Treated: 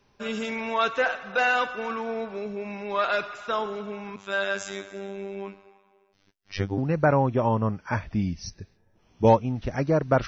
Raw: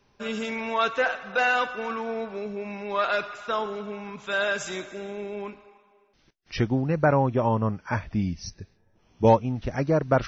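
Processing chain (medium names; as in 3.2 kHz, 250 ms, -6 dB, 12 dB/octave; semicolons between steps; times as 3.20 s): 4.16–6.78 s: robot voice 98.4 Hz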